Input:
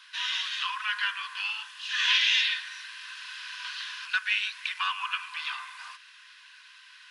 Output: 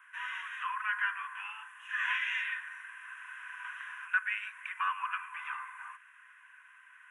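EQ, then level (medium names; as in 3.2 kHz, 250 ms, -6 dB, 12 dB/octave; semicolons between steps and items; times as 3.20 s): high-pass 790 Hz 24 dB/octave; Chebyshev band-stop 1.8–9.8 kHz, order 2; treble shelf 5.1 kHz -7.5 dB; 0.0 dB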